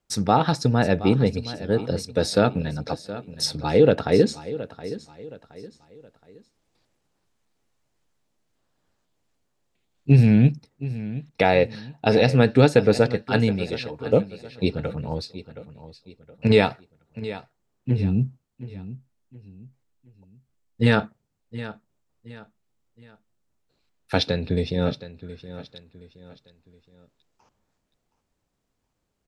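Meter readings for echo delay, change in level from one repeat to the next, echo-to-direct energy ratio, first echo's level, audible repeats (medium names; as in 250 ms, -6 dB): 720 ms, -9.0 dB, -14.5 dB, -15.0 dB, 3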